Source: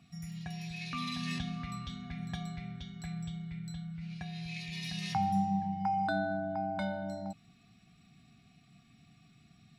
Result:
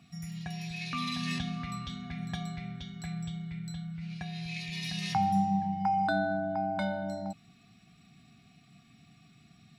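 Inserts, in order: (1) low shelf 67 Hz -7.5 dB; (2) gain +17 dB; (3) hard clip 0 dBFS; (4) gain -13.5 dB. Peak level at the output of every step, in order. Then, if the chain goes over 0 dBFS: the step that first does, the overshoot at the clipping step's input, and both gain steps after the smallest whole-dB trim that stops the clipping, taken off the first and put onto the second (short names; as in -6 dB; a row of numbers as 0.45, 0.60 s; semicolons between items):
-21.5, -4.5, -4.5, -18.0 dBFS; no overload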